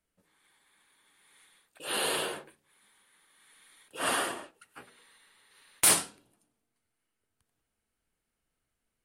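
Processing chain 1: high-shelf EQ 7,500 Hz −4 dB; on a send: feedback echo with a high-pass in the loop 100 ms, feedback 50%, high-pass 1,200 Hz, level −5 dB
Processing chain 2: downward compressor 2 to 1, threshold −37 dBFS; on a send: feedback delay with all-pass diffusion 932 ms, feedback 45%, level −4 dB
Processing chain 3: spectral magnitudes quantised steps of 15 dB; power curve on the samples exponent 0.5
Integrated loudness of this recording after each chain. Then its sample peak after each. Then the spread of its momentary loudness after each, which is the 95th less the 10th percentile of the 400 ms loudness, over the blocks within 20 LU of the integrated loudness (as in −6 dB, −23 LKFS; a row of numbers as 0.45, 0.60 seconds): −29.0, −39.0, −26.0 LKFS; −13.5, −15.5, −12.0 dBFS; 21, 16, 18 LU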